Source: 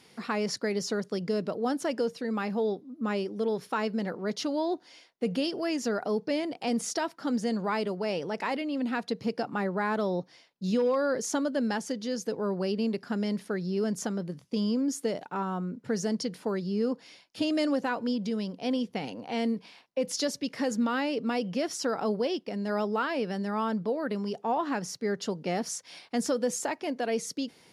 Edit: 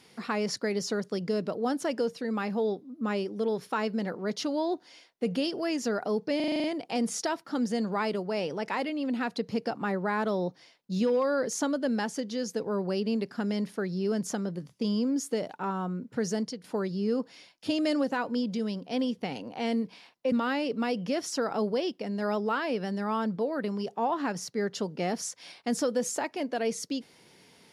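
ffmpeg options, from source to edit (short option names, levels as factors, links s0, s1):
-filter_complex "[0:a]asplit=10[s0][s1][s2][s3][s4][s5][s6][s7][s8][s9];[s0]atrim=end=6.402[s10];[s1]atrim=start=6.358:end=6.402[s11];[s2]atrim=start=6.358:end=6.402[s12];[s3]atrim=start=6.358:end=6.402[s13];[s4]atrim=start=6.358:end=6.402[s14];[s5]atrim=start=6.358:end=6.402[s15];[s6]atrim=start=6.358:end=6.402[s16];[s7]atrim=start=6.358:end=16.36,asetpts=PTS-STARTPTS,afade=t=out:st=9.722:d=0.28:silence=0.211349[s17];[s8]atrim=start=16.36:end=20.042,asetpts=PTS-STARTPTS,afade=t=in:d=0.004:c=hsin:silence=0.211349[s18];[s9]atrim=start=20.788[s19];[s10][s11]acrossfade=d=0.004:c1=hsin:c2=hsin[s20];[s20][s12]acrossfade=d=0.004:c1=hsin:c2=hsin[s21];[s21][s13]acrossfade=d=0.004:c1=hsin:c2=hsin[s22];[s22][s14]acrossfade=d=0.004:c1=hsin:c2=hsin[s23];[s23][s15]acrossfade=d=0.004:c1=hsin:c2=hsin[s24];[s24][s16]acrossfade=d=0.004:c1=hsin:c2=hsin[s25];[s17][s18]concat=n=2:v=0:a=1[s26];[s25][s26]acrossfade=d=0.004:c1=hsin:c2=hsin[s27];[s27][s19]acrossfade=d=0.004:c1=hsin:c2=hsin"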